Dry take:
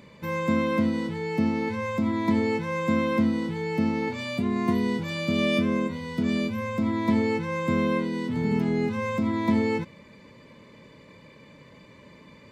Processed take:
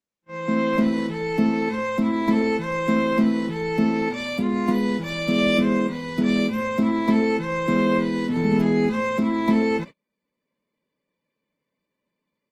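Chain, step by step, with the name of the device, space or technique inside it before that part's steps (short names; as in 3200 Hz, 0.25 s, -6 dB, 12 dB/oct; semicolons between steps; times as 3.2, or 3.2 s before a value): video call (HPF 160 Hz 24 dB/oct; AGC gain up to 14 dB; gate -27 dBFS, range -37 dB; gain -6.5 dB; Opus 20 kbps 48000 Hz)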